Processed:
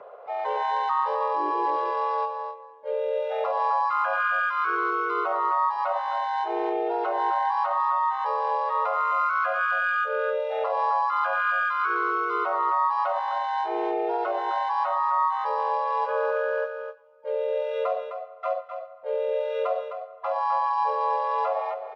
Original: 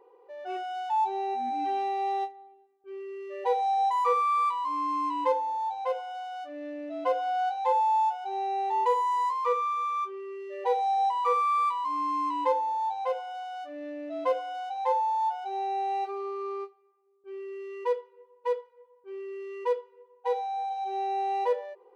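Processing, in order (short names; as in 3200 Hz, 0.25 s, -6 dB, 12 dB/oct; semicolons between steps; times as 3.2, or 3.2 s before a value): frequency shift +57 Hz; low shelf 440 Hz +6 dB; in parallel at +3 dB: compressor 6:1, threshold -37 dBFS, peak gain reduction 17 dB; on the sum: limiter -23 dBFS, peak gain reduction 12 dB; harmoniser +3 st -2 dB, +5 st -2 dB, +12 st -17 dB; air absorption 180 m; notches 50/100/150/200 Hz; on a send: echo 0.258 s -8.5 dB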